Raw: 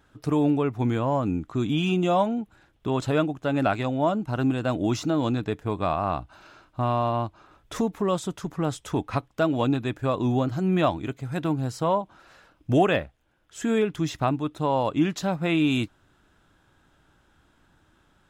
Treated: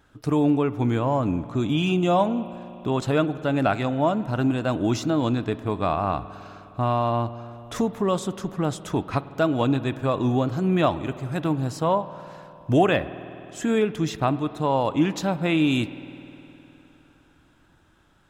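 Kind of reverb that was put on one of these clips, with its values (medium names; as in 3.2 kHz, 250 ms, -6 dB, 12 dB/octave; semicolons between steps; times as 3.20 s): spring tank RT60 3.3 s, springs 51 ms, chirp 20 ms, DRR 14.5 dB; trim +1.5 dB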